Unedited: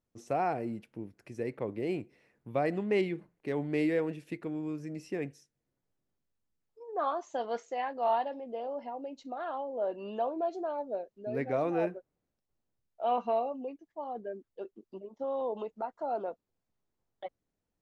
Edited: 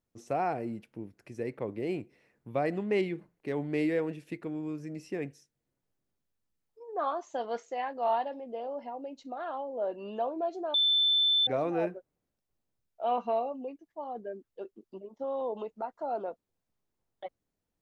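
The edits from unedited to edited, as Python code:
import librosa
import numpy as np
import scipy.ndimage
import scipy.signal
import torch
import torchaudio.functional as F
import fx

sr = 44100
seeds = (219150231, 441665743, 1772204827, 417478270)

y = fx.edit(x, sr, fx.bleep(start_s=10.74, length_s=0.73, hz=3530.0, db=-22.0), tone=tone)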